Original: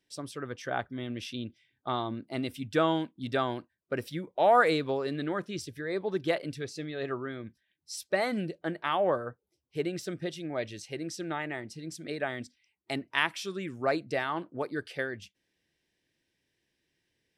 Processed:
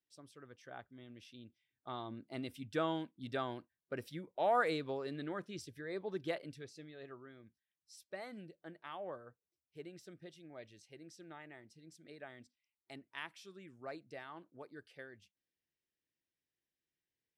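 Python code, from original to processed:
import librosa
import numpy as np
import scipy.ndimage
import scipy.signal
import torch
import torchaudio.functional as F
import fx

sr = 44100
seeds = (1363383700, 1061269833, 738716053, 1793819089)

y = fx.gain(x, sr, db=fx.line((1.37, -18.0), (2.25, -9.5), (6.25, -9.5), (7.16, -18.0)))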